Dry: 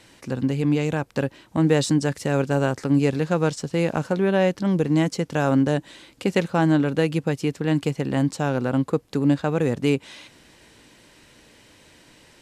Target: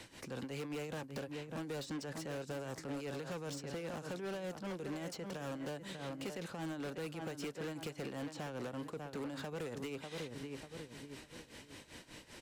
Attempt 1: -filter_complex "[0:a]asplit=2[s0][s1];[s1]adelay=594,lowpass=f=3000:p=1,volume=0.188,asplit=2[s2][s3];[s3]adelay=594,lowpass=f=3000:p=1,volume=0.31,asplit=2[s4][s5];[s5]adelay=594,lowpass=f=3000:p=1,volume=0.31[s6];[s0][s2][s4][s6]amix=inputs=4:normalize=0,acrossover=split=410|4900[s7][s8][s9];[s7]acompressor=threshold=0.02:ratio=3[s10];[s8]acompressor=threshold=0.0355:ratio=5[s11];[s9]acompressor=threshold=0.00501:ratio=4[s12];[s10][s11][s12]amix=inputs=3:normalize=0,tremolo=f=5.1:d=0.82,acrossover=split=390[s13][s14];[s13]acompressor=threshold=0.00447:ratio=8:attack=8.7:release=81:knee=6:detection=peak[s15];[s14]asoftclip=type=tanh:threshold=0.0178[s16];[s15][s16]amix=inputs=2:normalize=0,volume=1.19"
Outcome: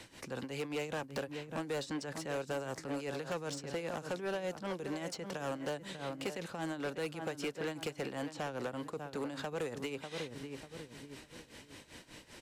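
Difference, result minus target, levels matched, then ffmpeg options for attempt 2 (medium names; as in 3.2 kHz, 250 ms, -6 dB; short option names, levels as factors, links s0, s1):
saturation: distortion -5 dB
-filter_complex "[0:a]asplit=2[s0][s1];[s1]adelay=594,lowpass=f=3000:p=1,volume=0.188,asplit=2[s2][s3];[s3]adelay=594,lowpass=f=3000:p=1,volume=0.31,asplit=2[s4][s5];[s5]adelay=594,lowpass=f=3000:p=1,volume=0.31[s6];[s0][s2][s4][s6]amix=inputs=4:normalize=0,acrossover=split=410|4900[s7][s8][s9];[s7]acompressor=threshold=0.02:ratio=3[s10];[s8]acompressor=threshold=0.0355:ratio=5[s11];[s9]acompressor=threshold=0.00501:ratio=4[s12];[s10][s11][s12]amix=inputs=3:normalize=0,tremolo=f=5.1:d=0.82,acrossover=split=390[s13][s14];[s13]acompressor=threshold=0.00447:ratio=8:attack=8.7:release=81:knee=6:detection=peak[s15];[s14]asoftclip=type=tanh:threshold=0.00631[s16];[s15][s16]amix=inputs=2:normalize=0,volume=1.19"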